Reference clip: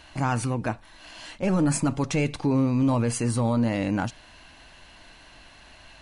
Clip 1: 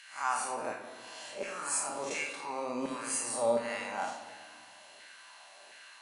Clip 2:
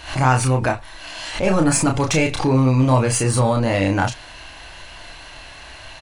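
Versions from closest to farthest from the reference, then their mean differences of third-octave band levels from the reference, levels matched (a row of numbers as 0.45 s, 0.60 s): 2, 1; 4.0 dB, 9.5 dB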